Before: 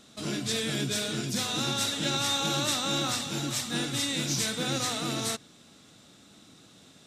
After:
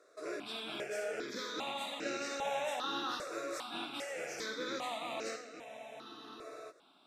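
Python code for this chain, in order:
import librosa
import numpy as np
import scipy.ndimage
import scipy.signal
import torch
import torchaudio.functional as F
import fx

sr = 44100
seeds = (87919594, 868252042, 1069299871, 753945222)

y = fx.rattle_buzz(x, sr, strikes_db=-35.0, level_db=-28.0)
y = scipy.signal.sosfilt(scipy.signal.butter(4, 440.0, 'highpass', fs=sr, output='sos'), y)
y = fx.tilt_eq(y, sr, slope=-4.5)
y = fx.doubler(y, sr, ms=50.0, db=-12)
y = y + 10.0 ** (-9.0 / 20.0) * np.pad(y, (int(521 * sr / 1000.0), 0))[:len(y)]
y = fx.spec_freeze(y, sr, seeds[0], at_s=5.67, hold_s=1.04)
y = fx.phaser_held(y, sr, hz=2.5, low_hz=840.0, high_hz=3400.0)
y = y * 10.0 ** (-1.5 / 20.0)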